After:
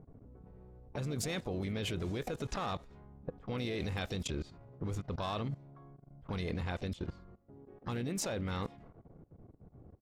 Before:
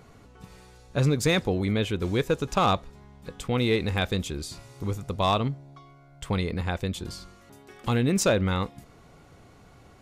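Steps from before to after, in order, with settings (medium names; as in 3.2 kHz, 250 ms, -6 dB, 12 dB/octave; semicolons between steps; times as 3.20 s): level-controlled noise filter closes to 370 Hz, open at -23 dBFS; harmony voices -3 st -15 dB, +3 st -16 dB, +7 st -15 dB; level held to a coarse grid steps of 18 dB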